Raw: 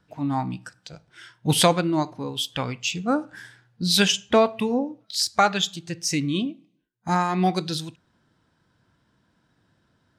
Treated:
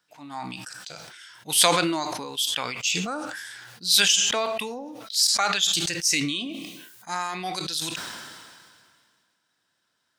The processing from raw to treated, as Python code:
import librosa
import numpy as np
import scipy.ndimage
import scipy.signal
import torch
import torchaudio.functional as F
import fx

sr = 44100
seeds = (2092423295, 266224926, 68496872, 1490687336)

y = fx.highpass(x, sr, hz=1500.0, slope=6)
y = fx.high_shelf(y, sr, hz=4700.0, db=8.5)
y = fx.sustainer(y, sr, db_per_s=29.0)
y = F.gain(torch.from_numpy(y), -2.0).numpy()